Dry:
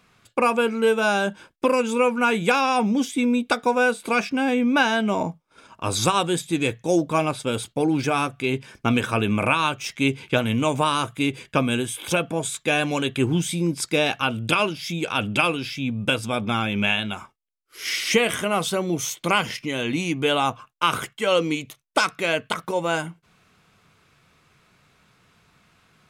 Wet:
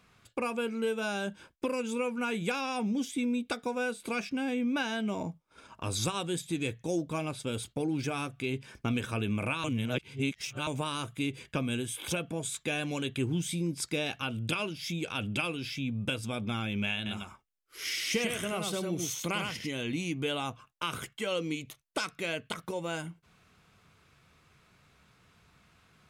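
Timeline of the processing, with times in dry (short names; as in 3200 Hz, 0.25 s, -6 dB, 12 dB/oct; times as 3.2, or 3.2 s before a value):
9.64–10.67 reverse
16.96–19.72 echo 99 ms -4.5 dB
whole clip: bell 61 Hz +6.5 dB 1.3 oct; compressor 1.5:1, threshold -30 dBFS; dynamic EQ 960 Hz, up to -6 dB, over -40 dBFS, Q 0.77; gain -4.5 dB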